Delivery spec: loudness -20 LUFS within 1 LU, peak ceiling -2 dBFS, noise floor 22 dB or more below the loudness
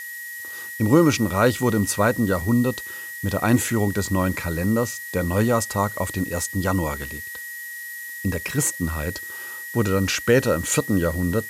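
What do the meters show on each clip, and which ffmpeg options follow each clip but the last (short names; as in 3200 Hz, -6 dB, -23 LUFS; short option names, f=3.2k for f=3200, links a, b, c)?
steady tone 1900 Hz; tone level -33 dBFS; noise floor -35 dBFS; noise floor target -45 dBFS; loudness -23.0 LUFS; peak -5.0 dBFS; loudness target -20.0 LUFS
-> -af "bandreject=f=1.9k:w=30"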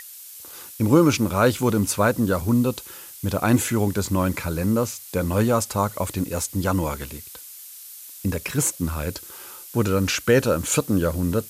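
steady tone none; noise floor -41 dBFS; noise floor target -45 dBFS
-> -af "afftdn=nr=6:nf=-41"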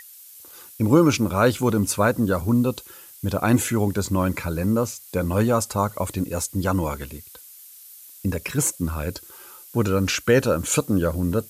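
noise floor -45 dBFS; loudness -22.5 LUFS; peak -5.5 dBFS; loudness target -20.0 LUFS
-> -af "volume=2.5dB"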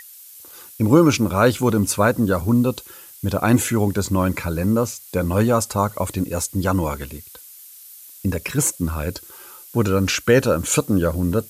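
loudness -20.0 LUFS; peak -3.0 dBFS; noise floor -43 dBFS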